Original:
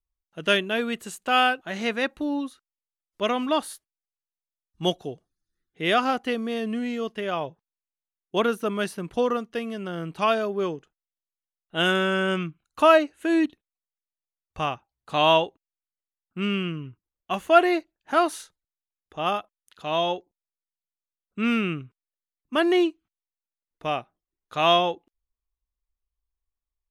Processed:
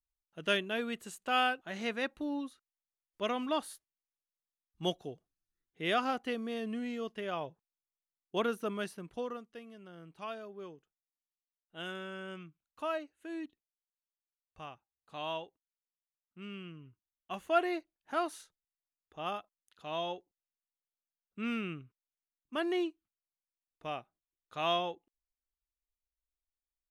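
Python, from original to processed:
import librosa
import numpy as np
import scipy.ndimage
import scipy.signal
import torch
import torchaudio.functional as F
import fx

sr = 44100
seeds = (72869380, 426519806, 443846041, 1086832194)

y = fx.gain(x, sr, db=fx.line((8.7, -9.0), (9.66, -19.5), (16.44, -19.5), (17.44, -12.0)))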